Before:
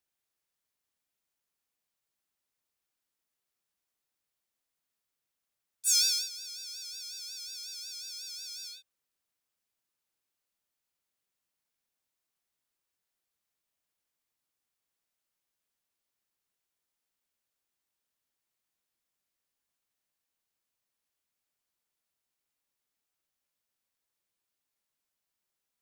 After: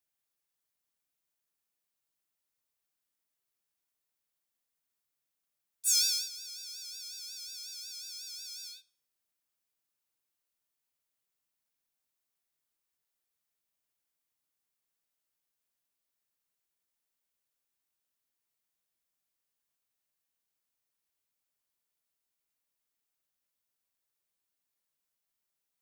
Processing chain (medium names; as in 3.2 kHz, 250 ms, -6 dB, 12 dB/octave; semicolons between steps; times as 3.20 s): treble shelf 9.3 kHz +5.5 dB; de-hum 416.3 Hz, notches 27; on a send: reverberation RT60 0.65 s, pre-delay 7 ms, DRR 18 dB; on the sum: trim -3 dB